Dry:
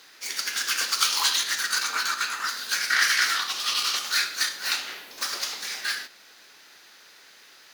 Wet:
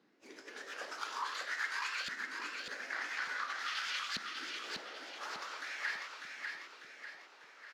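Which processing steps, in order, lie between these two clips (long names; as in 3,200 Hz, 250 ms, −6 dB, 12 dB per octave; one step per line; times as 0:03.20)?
pitch shifter swept by a sawtooth +2.5 semitones, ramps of 244 ms
auto-filter band-pass saw up 0.48 Hz 210–3,000 Hz
downward compressor 2 to 1, threshold −44 dBFS, peak gain reduction 9.5 dB
repeating echo 596 ms, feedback 47%, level −4.5 dB
level +3 dB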